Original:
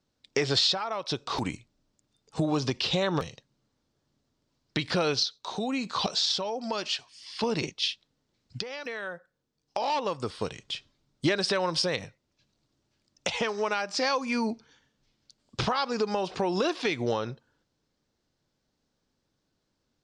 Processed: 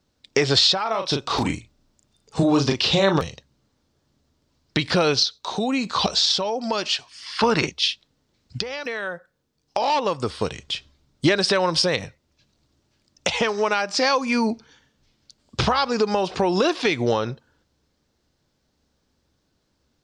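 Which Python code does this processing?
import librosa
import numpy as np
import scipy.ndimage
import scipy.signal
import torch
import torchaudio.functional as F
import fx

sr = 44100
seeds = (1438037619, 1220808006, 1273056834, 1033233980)

y = fx.doubler(x, sr, ms=36.0, db=-5.5, at=(0.82, 3.18))
y = fx.peak_eq(y, sr, hz=1400.0, db=12.0, octaves=1.1, at=(7.11, 7.68))
y = fx.peak_eq(y, sr, hz=71.0, db=13.0, octaves=0.21)
y = y * librosa.db_to_amplitude(7.0)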